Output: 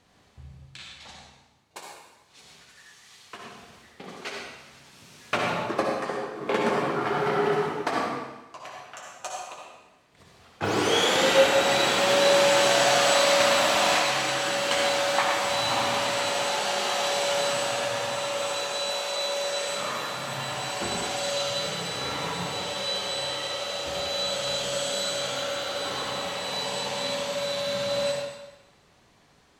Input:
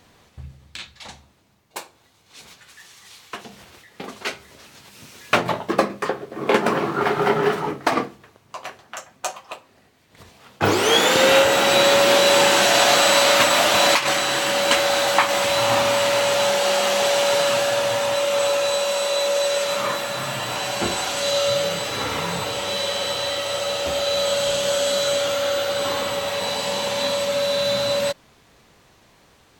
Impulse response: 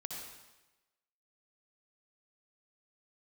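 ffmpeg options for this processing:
-filter_complex "[0:a]lowpass=11k[a];[1:a]atrim=start_sample=2205[b];[a][b]afir=irnorm=-1:irlink=0,volume=-4.5dB"

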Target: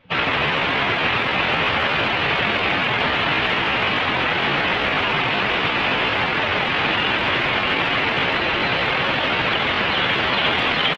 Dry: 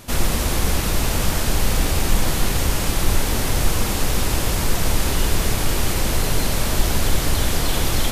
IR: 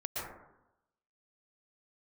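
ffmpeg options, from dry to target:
-filter_complex "[0:a]afftdn=nr=20:nf=-36,acrossover=split=620[a][b];[b]acontrast=69[c];[a][c]amix=inputs=2:normalize=0,atempo=0.74,crystalizer=i=5.5:c=0,asplit=2[d][e];[e]aecho=0:1:588:0.15[f];[d][f]amix=inputs=2:normalize=0,highpass=f=180:t=q:w=0.5412,highpass=f=180:t=q:w=1.307,lowpass=f=3k:t=q:w=0.5176,lowpass=f=3k:t=q:w=0.7071,lowpass=f=3k:t=q:w=1.932,afreqshift=-77,asplit=2[g][h];[h]adelay=140,highpass=300,lowpass=3.4k,asoftclip=type=hard:threshold=-14dB,volume=-13dB[i];[g][i]amix=inputs=2:normalize=0"

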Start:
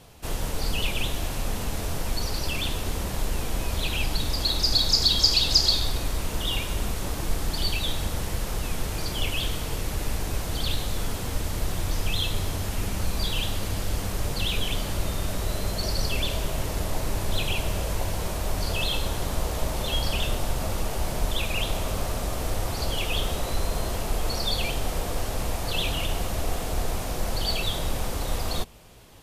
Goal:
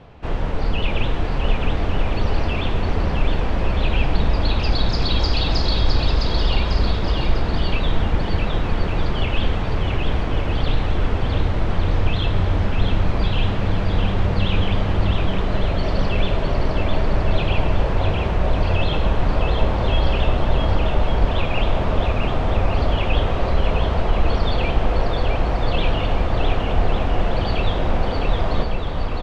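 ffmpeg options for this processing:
-filter_complex "[0:a]lowpass=2.6k,aemphasis=mode=reproduction:type=50kf,asplit=2[a][b];[b]aecho=0:1:660|1155|1526|1805|2014:0.631|0.398|0.251|0.158|0.1[c];[a][c]amix=inputs=2:normalize=0,volume=7dB"

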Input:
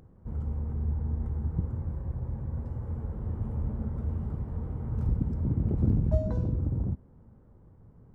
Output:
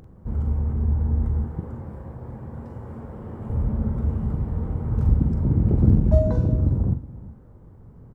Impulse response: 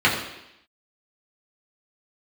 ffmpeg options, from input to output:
-filter_complex "[0:a]asettb=1/sr,asplit=3[a][b][c];[a]atrim=end=1.444[d];[b]atrim=start=1.44:end=3.5,asetpts=PTS-STARTPTS,afade=t=in:d=0.004:c=qsin,afade=t=out:st=2.056:d=0.004:c=qsin,highpass=f=310:p=1[e];[c]atrim=start=3.496[f];[d][e]acrossfade=d=0.004:c1=hsin:c2=qsin[g];[g][f]acrossfade=d=0.004:c1=qsin:c2=hsin,aecho=1:1:43|370:0.398|0.133,volume=7.5dB"

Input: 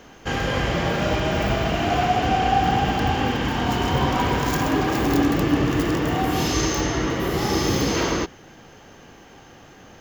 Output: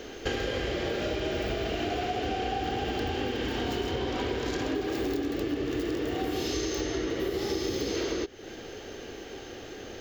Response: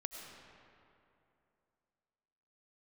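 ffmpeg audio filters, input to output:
-filter_complex "[0:a]asettb=1/sr,asplit=3[a][b][c];[a]atrim=end=3.914[d];[b]atrim=start=3.91:end=4.75,asetpts=PTS-STARTPTS,afade=t=in:d=0.004:c=qsin,afade=t=out:st=0.836:d=0.004:c=qsin,acrossover=split=8100[e][f];[f]acompressor=threshold=-53dB:ratio=4:attack=1:release=60[g];[e][g]amix=inputs=2:normalize=0[h];[c]atrim=start=4.746[i];[d][h]acrossfade=d=0.004:c1=hsin:c2=qsin[j];[j][i]acrossfade=d=0.004:c1=qsin:c2=hsin,equalizer=f=160:t=o:w=0.67:g=-11,equalizer=f=400:t=o:w=0.67:g=9,equalizer=f=1k:t=o:w=0.67:g=-9,equalizer=f=4k:t=o:w=0.67:g=5,equalizer=f=10k:t=o:w=0.67:g=-4,acompressor=threshold=-31dB:ratio=10,volume=3.5dB"

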